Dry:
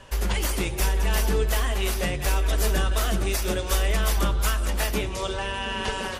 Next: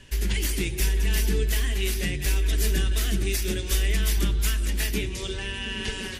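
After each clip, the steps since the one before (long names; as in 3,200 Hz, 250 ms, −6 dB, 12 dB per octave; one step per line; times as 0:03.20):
flat-topped bell 830 Hz −14 dB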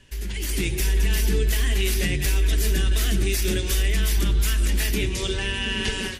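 brickwall limiter −19 dBFS, peak gain reduction 6.5 dB
automatic gain control gain up to 10 dB
level −4.5 dB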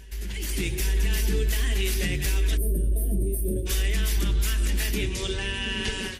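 backwards echo 862 ms −22.5 dB
gain on a spectral selection 0:02.57–0:03.66, 700–8,400 Hz −29 dB
level −3 dB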